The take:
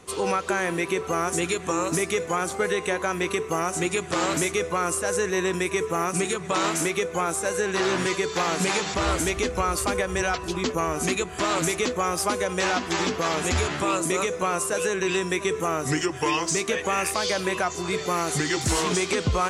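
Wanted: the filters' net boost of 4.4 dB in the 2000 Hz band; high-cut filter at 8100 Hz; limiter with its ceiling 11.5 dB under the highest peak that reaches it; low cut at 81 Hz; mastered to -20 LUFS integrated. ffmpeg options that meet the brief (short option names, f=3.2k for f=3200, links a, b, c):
-af "highpass=81,lowpass=8.1k,equalizer=f=2k:t=o:g=5.5,volume=10.5dB,alimiter=limit=-11dB:level=0:latency=1"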